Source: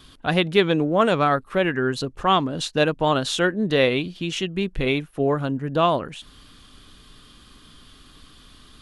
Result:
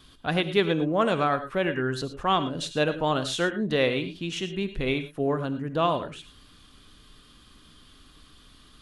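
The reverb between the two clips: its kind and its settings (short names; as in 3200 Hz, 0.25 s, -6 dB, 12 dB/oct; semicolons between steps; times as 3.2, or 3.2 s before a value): non-linear reverb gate 0.13 s rising, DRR 10.5 dB; gain -5 dB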